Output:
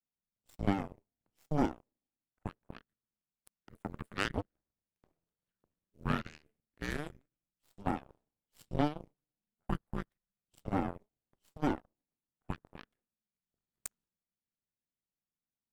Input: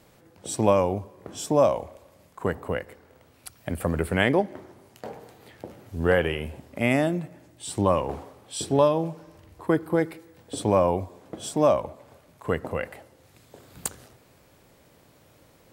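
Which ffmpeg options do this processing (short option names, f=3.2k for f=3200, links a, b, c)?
-af "adynamicequalizer=threshold=0.02:dfrequency=240:dqfactor=0.75:tfrequency=240:tqfactor=0.75:attack=5:release=100:ratio=0.375:range=2.5:mode=cutabove:tftype=bell,afreqshift=-300,aeval=exprs='0.531*(cos(1*acos(clip(val(0)/0.531,-1,1)))-cos(1*PI/2))+0.0237*(cos(3*acos(clip(val(0)/0.531,-1,1)))-cos(3*PI/2))+0.0168*(cos(6*acos(clip(val(0)/0.531,-1,1)))-cos(6*PI/2))+0.0668*(cos(7*acos(clip(val(0)/0.531,-1,1)))-cos(7*PI/2))':c=same,volume=-8dB"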